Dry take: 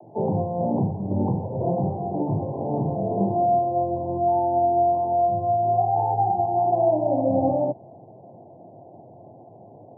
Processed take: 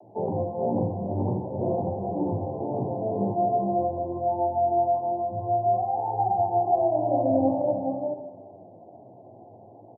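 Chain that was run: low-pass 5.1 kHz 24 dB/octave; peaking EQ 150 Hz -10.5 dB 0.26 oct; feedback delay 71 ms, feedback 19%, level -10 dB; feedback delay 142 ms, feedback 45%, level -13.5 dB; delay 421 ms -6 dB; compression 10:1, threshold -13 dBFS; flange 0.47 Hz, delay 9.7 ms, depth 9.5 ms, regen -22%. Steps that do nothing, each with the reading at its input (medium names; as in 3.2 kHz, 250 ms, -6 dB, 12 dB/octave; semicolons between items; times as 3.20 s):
low-pass 5.1 kHz: input has nothing above 910 Hz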